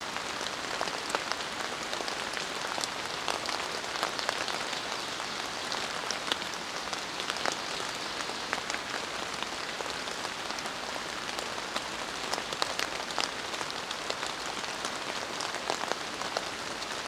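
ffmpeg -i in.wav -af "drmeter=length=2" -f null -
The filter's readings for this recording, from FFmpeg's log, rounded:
Channel 1: DR: 23.6
Overall DR: 23.6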